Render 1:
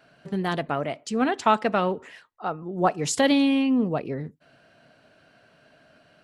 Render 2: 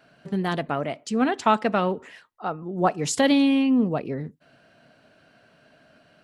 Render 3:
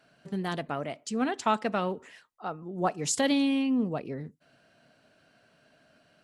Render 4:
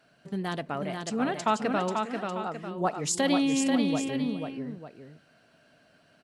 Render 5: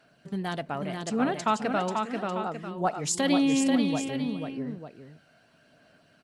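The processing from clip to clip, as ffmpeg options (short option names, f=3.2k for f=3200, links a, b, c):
-af "equalizer=f=220:t=o:w=0.77:g=2.5"
-af "equalizer=f=8k:t=o:w=1.6:g=6,volume=-6.5dB"
-af "aecho=1:1:408|488|896:0.141|0.596|0.266"
-af "aphaser=in_gain=1:out_gain=1:delay=1.4:decay=0.23:speed=0.85:type=sinusoidal"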